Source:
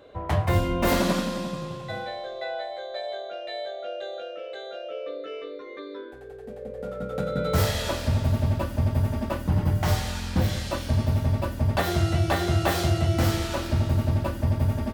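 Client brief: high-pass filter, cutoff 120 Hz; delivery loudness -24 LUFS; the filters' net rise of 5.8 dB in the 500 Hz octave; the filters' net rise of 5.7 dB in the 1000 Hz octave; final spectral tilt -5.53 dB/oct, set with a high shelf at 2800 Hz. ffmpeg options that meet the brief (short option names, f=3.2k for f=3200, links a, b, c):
-af "highpass=120,equalizer=f=500:t=o:g=5.5,equalizer=f=1k:t=o:g=6,highshelf=f=2.8k:g=-4,volume=2dB"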